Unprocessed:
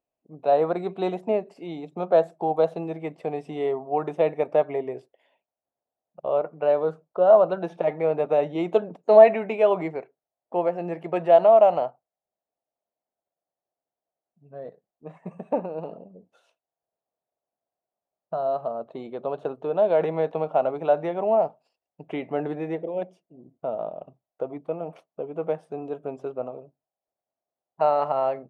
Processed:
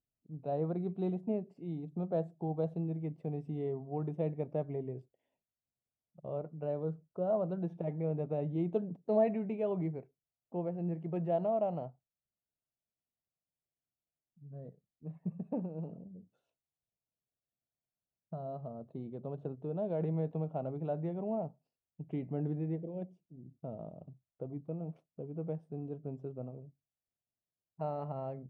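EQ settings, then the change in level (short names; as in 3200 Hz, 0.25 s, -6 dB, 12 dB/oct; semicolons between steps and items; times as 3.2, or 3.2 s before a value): EQ curve 130 Hz 0 dB, 580 Hz -22 dB, 1200 Hz -27 dB; +5.5 dB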